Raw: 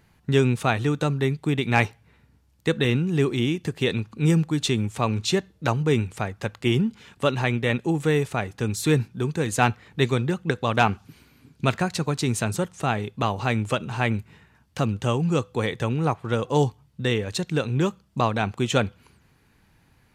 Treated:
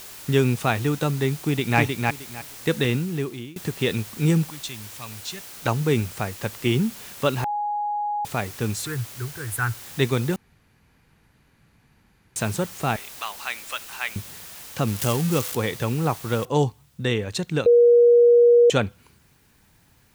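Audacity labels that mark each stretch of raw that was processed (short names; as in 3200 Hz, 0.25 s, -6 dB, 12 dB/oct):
1.370000	1.790000	echo throw 0.31 s, feedback 20%, level -3 dB
2.830000	3.560000	fade out, to -23 dB
4.500000	5.660000	passive tone stack bass-middle-treble 5-5-5
7.440000	8.250000	bleep 830 Hz -23 dBFS
8.860000	9.860000	EQ curve 120 Hz 0 dB, 180 Hz -21 dB, 410 Hz -10 dB, 610 Hz -23 dB, 1500 Hz +2 dB, 3300 Hz -26 dB, 5800 Hz -24 dB, 11000 Hz +11 dB
10.360000	12.360000	room tone
12.960000	14.160000	HPF 1400 Hz
14.870000	15.550000	switching spikes of -16.5 dBFS
16.450000	16.450000	noise floor step -41 dB -64 dB
17.660000	18.700000	bleep 477 Hz -10.5 dBFS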